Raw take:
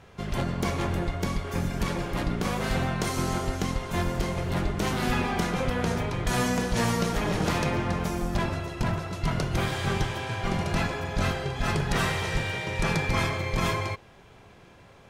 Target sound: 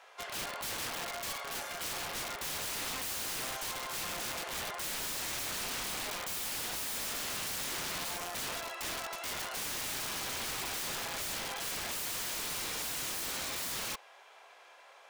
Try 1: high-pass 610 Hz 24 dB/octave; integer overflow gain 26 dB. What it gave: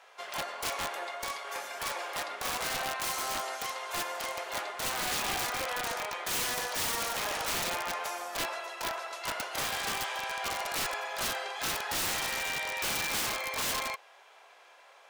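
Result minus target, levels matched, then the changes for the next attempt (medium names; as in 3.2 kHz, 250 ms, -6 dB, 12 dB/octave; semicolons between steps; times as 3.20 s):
integer overflow: distortion -16 dB
change: integer overflow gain 32.5 dB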